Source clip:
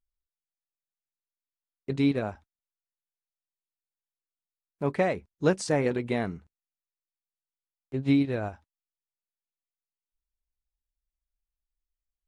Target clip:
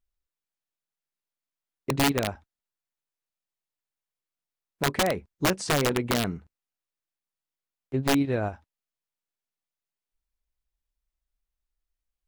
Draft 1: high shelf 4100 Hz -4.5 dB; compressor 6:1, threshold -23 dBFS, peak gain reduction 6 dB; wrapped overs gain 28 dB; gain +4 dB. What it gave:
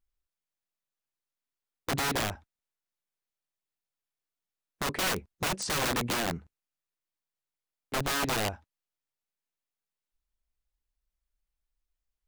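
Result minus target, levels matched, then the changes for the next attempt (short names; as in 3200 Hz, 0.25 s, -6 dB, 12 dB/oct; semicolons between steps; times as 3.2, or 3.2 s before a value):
wrapped overs: distortion +22 dB
change: wrapped overs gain 20.5 dB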